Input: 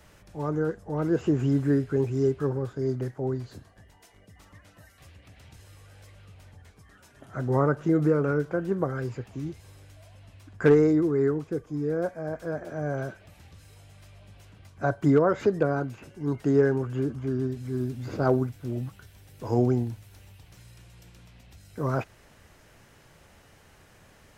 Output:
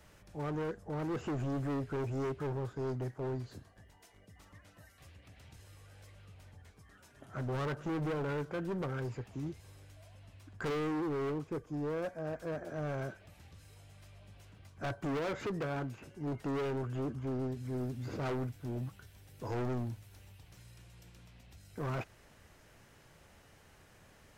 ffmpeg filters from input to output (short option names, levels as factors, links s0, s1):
-af "asoftclip=type=hard:threshold=0.0398,volume=0.562"